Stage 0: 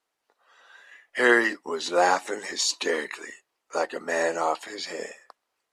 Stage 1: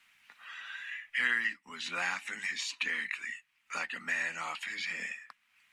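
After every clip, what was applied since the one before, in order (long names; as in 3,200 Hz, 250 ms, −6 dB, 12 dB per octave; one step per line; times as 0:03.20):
drawn EQ curve 220 Hz 0 dB, 380 Hz −22 dB, 600 Hz −18 dB, 2,400 Hz +12 dB, 4,500 Hz −3 dB
multiband upward and downward compressor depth 70%
level −8 dB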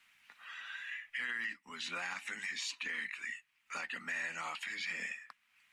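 brickwall limiter −27 dBFS, peak gain reduction 10.5 dB
level −2 dB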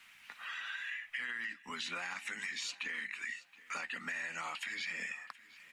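downward compressor 3 to 1, threshold −48 dBFS, peak gain reduction 10 dB
repeating echo 723 ms, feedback 27%, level −20 dB
level +8 dB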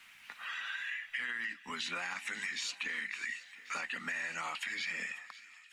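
fade-out on the ending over 0.76 s
delay with a high-pass on its return 545 ms, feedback 67%, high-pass 2,100 Hz, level −16 dB
level +2 dB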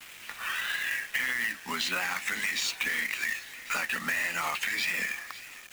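pitch vibrato 1.7 Hz 83 cents
log-companded quantiser 4 bits
level +7.5 dB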